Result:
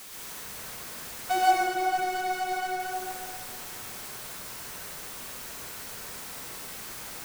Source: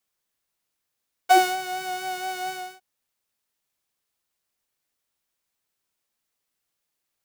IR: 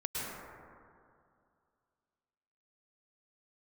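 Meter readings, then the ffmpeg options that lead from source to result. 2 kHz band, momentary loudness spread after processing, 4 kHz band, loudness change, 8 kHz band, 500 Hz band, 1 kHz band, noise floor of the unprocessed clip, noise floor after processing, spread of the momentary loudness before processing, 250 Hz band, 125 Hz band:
-1.5 dB, 12 LU, -2.5 dB, -7.5 dB, +2.5 dB, -2.0 dB, -1.5 dB, -81 dBFS, -41 dBFS, 15 LU, -2.5 dB, no reading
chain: -filter_complex "[0:a]aeval=exprs='val(0)+0.5*0.0473*sgn(val(0))':c=same[s0];[1:a]atrim=start_sample=2205[s1];[s0][s1]afir=irnorm=-1:irlink=0,volume=0.355"

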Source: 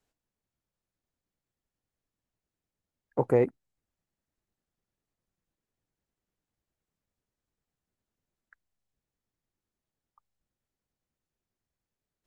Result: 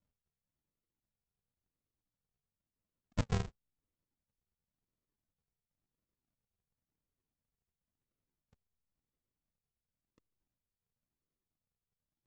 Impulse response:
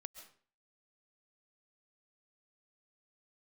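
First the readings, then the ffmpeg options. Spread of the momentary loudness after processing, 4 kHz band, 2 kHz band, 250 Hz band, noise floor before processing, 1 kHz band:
8 LU, no reading, -4.0 dB, -9.5 dB, under -85 dBFS, -10.0 dB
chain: -filter_complex "[0:a]acrossover=split=100|670[s0][s1][s2];[s0]acompressor=threshold=0.002:ratio=4[s3];[s1]acompressor=threshold=0.0355:ratio=4[s4];[s2]acompressor=threshold=0.0178:ratio=4[s5];[s3][s4][s5]amix=inputs=3:normalize=0,aresample=16000,acrusher=samples=37:mix=1:aa=0.000001:lfo=1:lforange=37:lforate=0.95,aresample=44100,volume=0.631"

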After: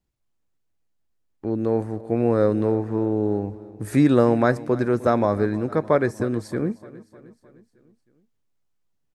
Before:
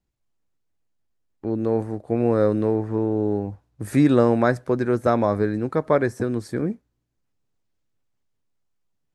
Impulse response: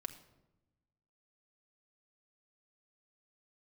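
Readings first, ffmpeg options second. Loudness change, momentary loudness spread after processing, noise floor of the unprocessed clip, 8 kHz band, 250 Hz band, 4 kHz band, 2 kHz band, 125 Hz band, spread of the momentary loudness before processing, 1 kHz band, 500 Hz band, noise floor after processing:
0.0 dB, 10 LU, -75 dBFS, no reading, 0.0 dB, 0.0 dB, 0.0 dB, 0.0 dB, 11 LU, 0.0 dB, 0.0 dB, -72 dBFS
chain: -af "aecho=1:1:307|614|921|1228|1535:0.112|0.0628|0.0352|0.0197|0.011"

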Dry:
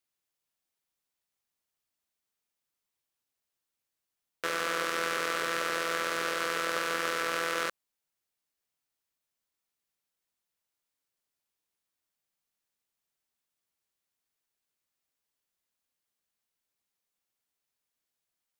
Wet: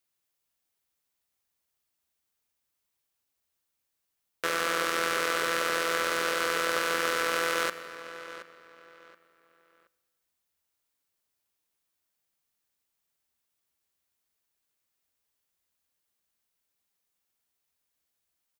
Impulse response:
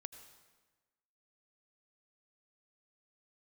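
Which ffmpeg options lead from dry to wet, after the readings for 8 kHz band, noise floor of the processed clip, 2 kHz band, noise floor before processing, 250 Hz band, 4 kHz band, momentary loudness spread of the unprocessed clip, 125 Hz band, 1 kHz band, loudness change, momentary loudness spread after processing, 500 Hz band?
+3.5 dB, -81 dBFS, +3.0 dB, under -85 dBFS, +3.0 dB, +3.5 dB, 3 LU, +2.0 dB, +2.5 dB, +3.0 dB, 15 LU, +3.5 dB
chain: -filter_complex "[0:a]equalizer=f=73:w=7.8:g=10.5,asplit=2[s0][s1];[s1]adelay=724,lowpass=f=3800:p=1,volume=0.211,asplit=2[s2][s3];[s3]adelay=724,lowpass=f=3800:p=1,volume=0.29,asplit=2[s4][s5];[s5]adelay=724,lowpass=f=3800:p=1,volume=0.29[s6];[s0][s2][s4][s6]amix=inputs=4:normalize=0,asplit=2[s7][s8];[1:a]atrim=start_sample=2205,highshelf=f=9100:g=10.5[s9];[s8][s9]afir=irnorm=-1:irlink=0,volume=0.668[s10];[s7][s10]amix=inputs=2:normalize=0"

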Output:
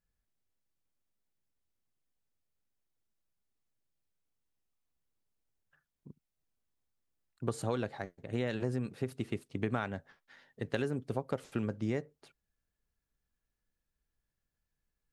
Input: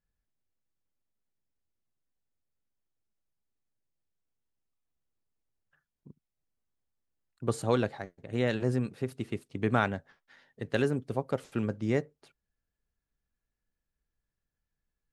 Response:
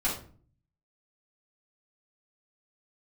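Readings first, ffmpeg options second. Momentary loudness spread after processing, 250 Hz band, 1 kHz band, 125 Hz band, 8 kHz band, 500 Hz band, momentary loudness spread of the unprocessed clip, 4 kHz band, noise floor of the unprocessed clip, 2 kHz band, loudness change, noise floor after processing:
6 LU, -4.5 dB, -7.0 dB, -4.5 dB, -4.0 dB, -5.5 dB, 9 LU, -5.0 dB, under -85 dBFS, -6.5 dB, -5.5 dB, under -85 dBFS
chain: -af "acompressor=threshold=0.0355:ratio=6"

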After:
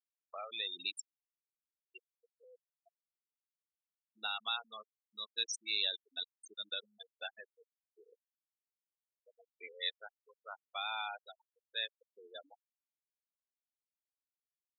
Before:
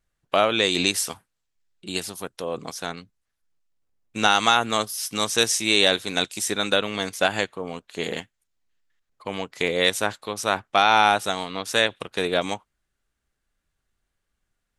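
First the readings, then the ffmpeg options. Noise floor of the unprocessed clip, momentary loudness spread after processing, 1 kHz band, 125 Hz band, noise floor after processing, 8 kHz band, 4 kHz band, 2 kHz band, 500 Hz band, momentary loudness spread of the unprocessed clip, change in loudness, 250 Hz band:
-79 dBFS, 18 LU, -24.0 dB, under -40 dB, under -85 dBFS, -22.0 dB, -15.0 dB, -20.5 dB, -29.0 dB, 16 LU, -16.5 dB, -38.5 dB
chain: -af "afftfilt=real='re*gte(hypot(re,im),0.224)':imag='im*gte(hypot(re,im),0.224)':win_size=1024:overlap=0.75,aderivative,volume=0.501"

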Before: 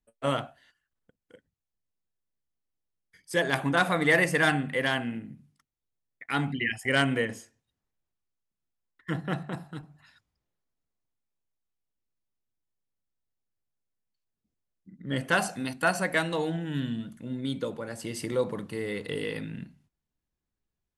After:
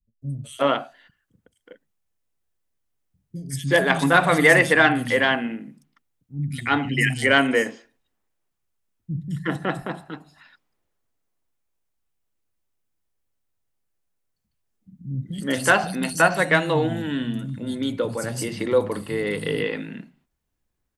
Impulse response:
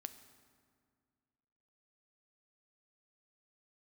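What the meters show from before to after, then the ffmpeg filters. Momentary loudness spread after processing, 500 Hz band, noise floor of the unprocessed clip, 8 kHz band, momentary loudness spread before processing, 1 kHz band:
16 LU, +8.0 dB, under -85 dBFS, +7.5 dB, 16 LU, +8.0 dB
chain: -filter_complex "[0:a]acrossover=split=190|4300[s0][s1][s2];[s2]adelay=220[s3];[s1]adelay=370[s4];[s0][s4][s3]amix=inputs=3:normalize=0,acontrast=76,volume=1.19"

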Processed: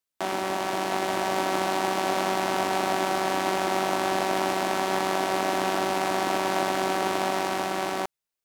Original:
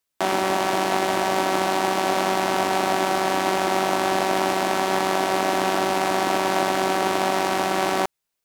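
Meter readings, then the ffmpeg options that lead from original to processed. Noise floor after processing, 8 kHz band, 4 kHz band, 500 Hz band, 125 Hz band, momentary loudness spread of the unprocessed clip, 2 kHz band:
under -85 dBFS, -4.0 dB, -4.0 dB, -4.0 dB, -4.0 dB, 1 LU, -4.0 dB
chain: -af "dynaudnorm=f=180:g=11:m=1.5,volume=0.473"

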